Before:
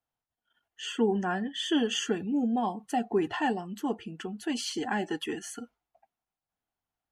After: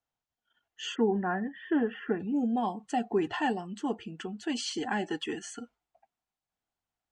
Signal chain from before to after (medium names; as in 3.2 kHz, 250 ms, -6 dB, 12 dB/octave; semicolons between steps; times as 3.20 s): Chebyshev low-pass 7.1 kHz, order 4, from 0.94 s 2.1 kHz, from 2.19 s 8.3 kHz